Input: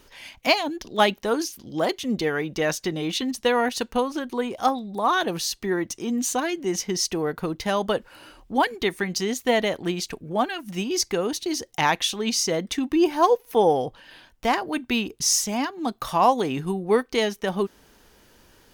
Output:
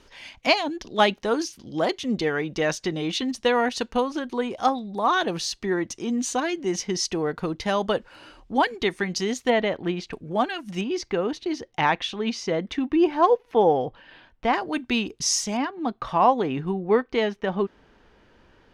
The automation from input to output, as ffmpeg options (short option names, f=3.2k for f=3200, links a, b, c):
-af "asetnsamples=n=441:p=0,asendcmd='9.5 lowpass f 2900;10.13 lowpass f 7100;10.81 lowpass f 2900;14.55 lowpass f 6600;15.57 lowpass f 2700',lowpass=6.6k"